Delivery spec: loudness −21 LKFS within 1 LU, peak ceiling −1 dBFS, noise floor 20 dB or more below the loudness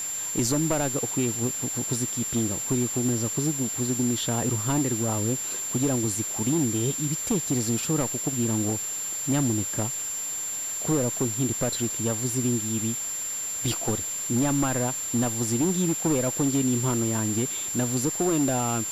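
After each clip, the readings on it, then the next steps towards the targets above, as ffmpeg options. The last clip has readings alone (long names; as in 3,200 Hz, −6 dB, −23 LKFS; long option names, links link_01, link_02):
interfering tone 7,300 Hz; level of the tone −29 dBFS; background noise floor −32 dBFS; target noise floor −46 dBFS; integrated loudness −25.5 LKFS; sample peak −15.0 dBFS; target loudness −21.0 LKFS
→ -af "bandreject=frequency=7300:width=30"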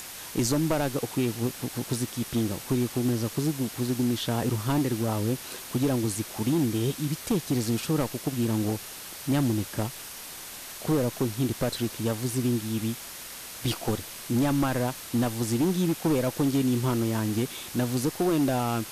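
interfering tone none found; background noise floor −41 dBFS; target noise floor −48 dBFS
→ -af "afftdn=noise_reduction=7:noise_floor=-41"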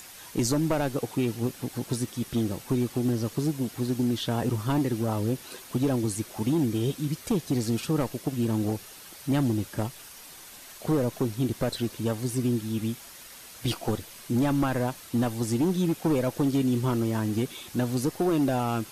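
background noise floor −47 dBFS; target noise floor −48 dBFS
→ -af "afftdn=noise_reduction=6:noise_floor=-47"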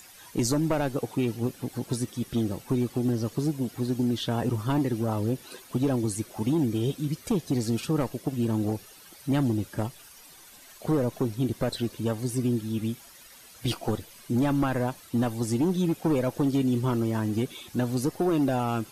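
background noise floor −51 dBFS; integrated loudness −28.0 LKFS; sample peak −17.5 dBFS; target loudness −21.0 LKFS
→ -af "volume=7dB"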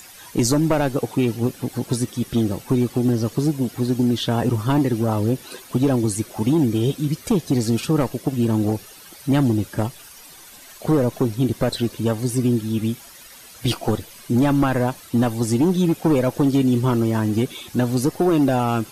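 integrated loudness −21.0 LKFS; sample peak −10.5 dBFS; background noise floor −44 dBFS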